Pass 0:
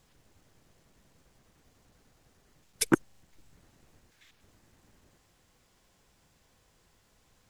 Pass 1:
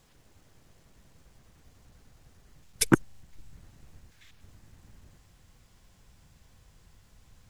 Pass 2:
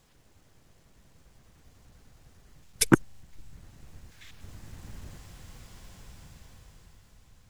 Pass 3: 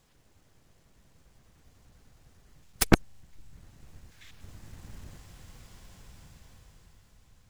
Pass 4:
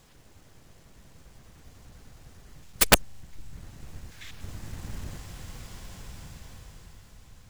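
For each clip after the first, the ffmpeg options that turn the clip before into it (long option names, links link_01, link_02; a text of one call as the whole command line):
ffmpeg -i in.wav -af "asubboost=boost=3:cutoff=190,volume=3dB" out.wav
ffmpeg -i in.wav -af "dynaudnorm=framelen=330:gausssize=9:maxgain=12.5dB,volume=-1dB" out.wav
ffmpeg -i in.wav -af "aeval=exprs='0.841*(cos(1*acos(clip(val(0)/0.841,-1,1)))-cos(1*PI/2))+0.266*(cos(6*acos(clip(val(0)/0.841,-1,1)))-cos(6*PI/2))':channel_layout=same,volume=-2.5dB" out.wav
ffmpeg -i in.wav -af "aeval=exprs='(mod(4.22*val(0)+1,2)-1)/4.22':channel_layout=same,volume=8.5dB" out.wav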